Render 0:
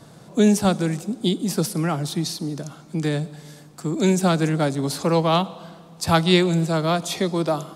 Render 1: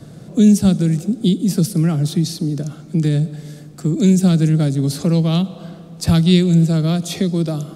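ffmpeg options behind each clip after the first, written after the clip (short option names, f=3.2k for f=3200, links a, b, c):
-filter_complex "[0:a]lowshelf=f=470:g=9.5,acrossover=split=240|3000[a][b][c];[b]acompressor=threshold=-27dB:ratio=3[d];[a][d][c]amix=inputs=3:normalize=0,equalizer=f=940:t=o:w=0.54:g=-9.5,volume=1.5dB"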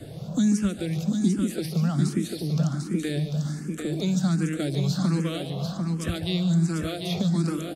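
-filter_complex "[0:a]acrossover=split=830|2200|4800[a][b][c][d];[a]acompressor=threshold=-25dB:ratio=4[e];[b]acompressor=threshold=-40dB:ratio=4[f];[c]acompressor=threshold=-43dB:ratio=4[g];[d]acompressor=threshold=-45dB:ratio=4[h];[e][f][g][h]amix=inputs=4:normalize=0,aecho=1:1:144|745:0.316|0.531,asplit=2[i][j];[j]afreqshift=1.3[k];[i][k]amix=inputs=2:normalize=1,volume=3dB"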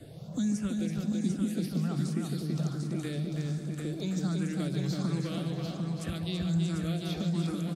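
-filter_complex "[0:a]asplit=2[a][b];[b]adelay=330,lowpass=f=4.6k:p=1,volume=-3.5dB,asplit=2[c][d];[d]adelay=330,lowpass=f=4.6k:p=1,volume=0.38,asplit=2[e][f];[f]adelay=330,lowpass=f=4.6k:p=1,volume=0.38,asplit=2[g][h];[h]adelay=330,lowpass=f=4.6k:p=1,volume=0.38,asplit=2[i][j];[j]adelay=330,lowpass=f=4.6k:p=1,volume=0.38[k];[a][c][e][g][i][k]amix=inputs=6:normalize=0,volume=-8dB"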